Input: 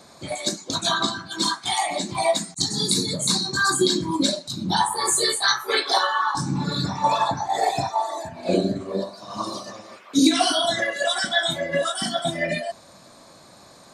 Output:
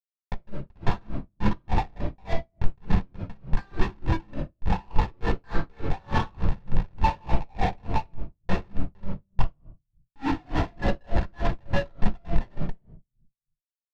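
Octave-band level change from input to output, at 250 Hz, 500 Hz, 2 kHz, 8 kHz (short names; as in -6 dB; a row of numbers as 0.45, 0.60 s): -6.5 dB, -9.5 dB, -11.5 dB, under -30 dB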